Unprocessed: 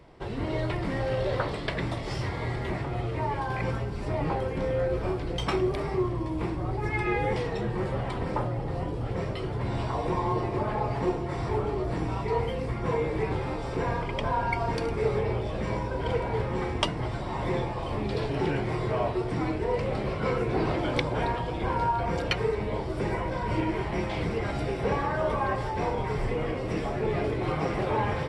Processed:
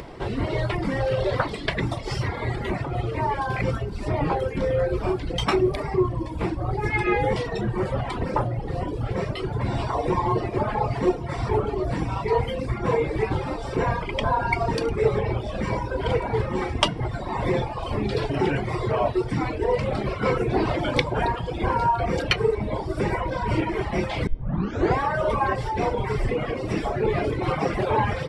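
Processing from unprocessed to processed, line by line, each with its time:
0:24.27: tape start 0.74 s
whole clip: hum removal 157.7 Hz, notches 39; reverb reduction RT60 1.5 s; upward compression, threshold −38 dBFS; level +7 dB

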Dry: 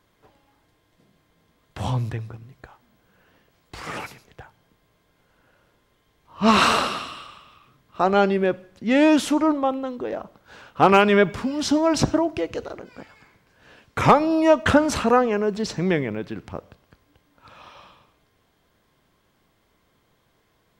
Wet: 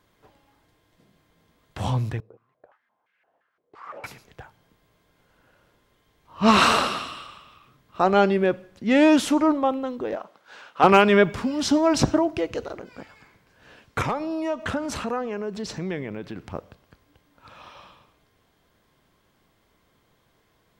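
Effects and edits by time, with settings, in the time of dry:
0:02.20–0:04.04: band-pass on a step sequencer 5.8 Hz 460–2,200 Hz
0:10.16–0:10.84: meter weighting curve A
0:14.02–0:16.52: downward compressor 2 to 1, threshold −32 dBFS

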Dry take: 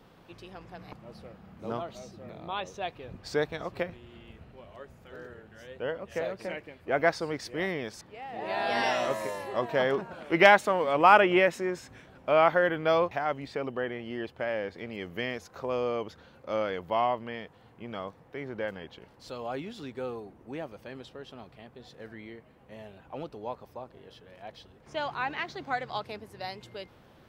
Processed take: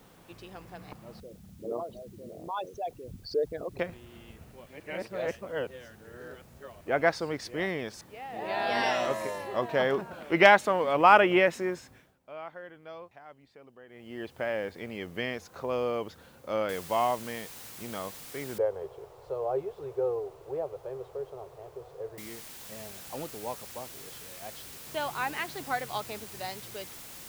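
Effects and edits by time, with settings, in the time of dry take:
0:01.20–0:03.79: spectral envelope exaggerated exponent 3
0:04.66–0:06.81: reverse
0:11.68–0:14.37: duck −20 dB, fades 0.49 s
0:16.69: noise floor change −65 dB −46 dB
0:18.58–0:22.18: drawn EQ curve 140 Hz 0 dB, 240 Hz −28 dB, 400 Hz +10 dB, 1,100 Hz −1 dB, 1,700 Hz −14 dB, 10,000 Hz −24 dB

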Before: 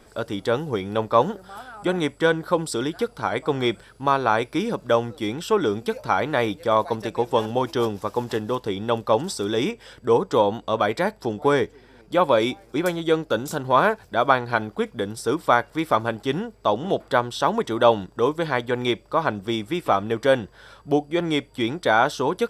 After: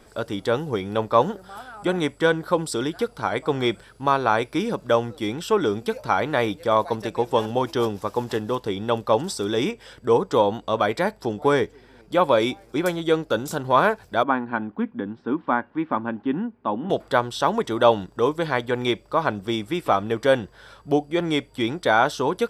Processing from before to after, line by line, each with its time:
0:14.23–0:16.90: loudspeaker in its box 130–2,300 Hz, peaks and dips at 130 Hz −9 dB, 250 Hz +9 dB, 450 Hz −9 dB, 650 Hz −9 dB, 1,300 Hz −6 dB, 2,100 Hz −8 dB

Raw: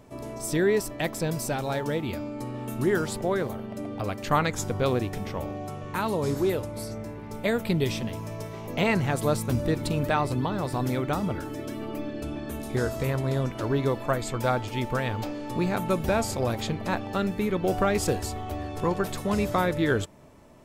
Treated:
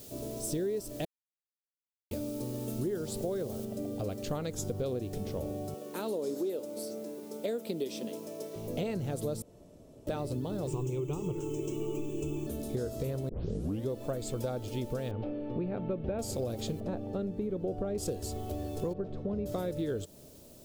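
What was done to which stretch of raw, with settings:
0:01.05–0:02.11: silence
0:03.65: noise floor change −47 dB −55 dB
0:05.74–0:08.56: high-pass filter 230 Hz 24 dB per octave
0:09.42–0:10.07: fill with room tone
0:10.67–0:12.47: EQ curve with evenly spaced ripples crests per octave 0.71, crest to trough 18 dB
0:13.29: tape start 0.60 s
0:15.11–0:16.19: low-pass filter 2,700 Hz 24 dB per octave
0:16.80–0:17.98: low-pass filter 1,100 Hz 6 dB per octave
0:18.93–0:19.46: head-to-tape spacing loss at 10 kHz 44 dB
whole clip: graphic EQ with 10 bands 500 Hz +6 dB, 1,000 Hz −11 dB, 2,000 Hz −11 dB; downward compressor, threshold −28 dBFS; level −2.5 dB

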